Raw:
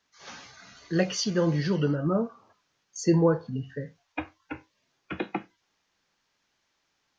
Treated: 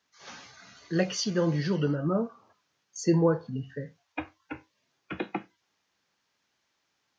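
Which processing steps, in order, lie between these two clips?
high-pass 68 Hz; trim -1.5 dB

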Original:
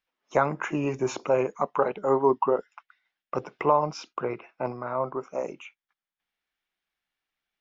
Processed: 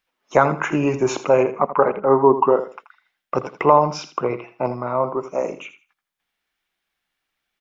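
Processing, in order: 1.43–2.33 s: low-pass 3.2 kHz -> 1.7 kHz 24 dB/octave; 4.19–5.34 s: peaking EQ 1.6 kHz -10 dB 0.27 oct; feedback delay 81 ms, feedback 22%, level -12.5 dB; trim +7.5 dB

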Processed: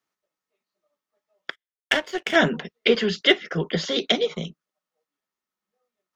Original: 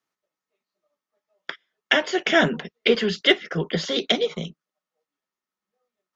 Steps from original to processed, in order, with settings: 1.50–2.36 s: power-law waveshaper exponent 1.4

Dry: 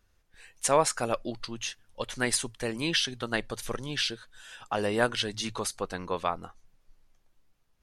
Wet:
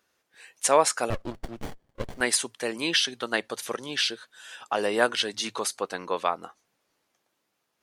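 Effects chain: high-pass 290 Hz 12 dB/octave; 1.10–2.21 s: sliding maximum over 33 samples; trim +3.5 dB

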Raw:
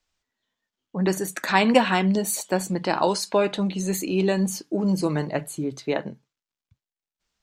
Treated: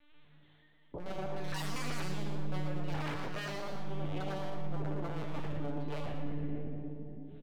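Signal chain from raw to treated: 4.75–5.90 s: high-pass 130 Hz 12 dB/octave; reverberation RT60 1.3 s, pre-delay 3 ms, DRR -11 dB; LPC vocoder at 8 kHz pitch kept; wavefolder -12 dBFS; peak limiter -24 dBFS, peak gain reduction 12 dB; compression 2:1, threshold -52 dBFS, peak gain reduction 13.5 dB; feedback comb 290 Hz, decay 0.97 s, mix 80%; frequency-shifting echo 116 ms, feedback 38%, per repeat +150 Hz, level -9 dB; trim +15 dB

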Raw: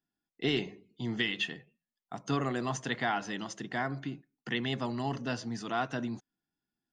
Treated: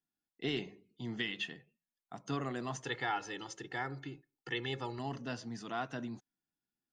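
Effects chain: 2.83–4.99 s: comb 2.3 ms, depth 78%; trim -6 dB

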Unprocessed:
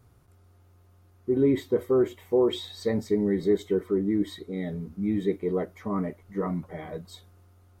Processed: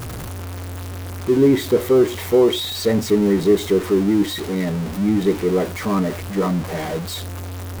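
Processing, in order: jump at every zero crossing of -31.5 dBFS; trim +7 dB

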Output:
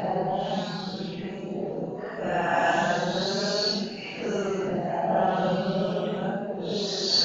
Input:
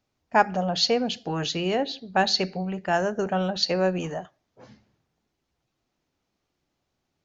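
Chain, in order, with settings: echo whose repeats swap between lows and highs 374 ms, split 820 Hz, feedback 70%, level -3 dB; Paulstretch 6.5×, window 0.05 s, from 2.53 s; harmonic-percussive split percussive +6 dB; trim -5 dB

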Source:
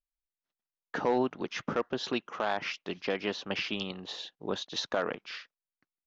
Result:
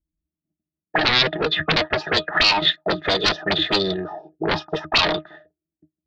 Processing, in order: dynamic bell 460 Hz, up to +7 dB, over -42 dBFS, Q 1.3; pitch-class resonator D#, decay 0.12 s; sine folder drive 14 dB, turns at -26 dBFS; formant shift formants +6 st; touch-sensitive low-pass 250–4300 Hz up, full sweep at -28 dBFS; trim +8.5 dB

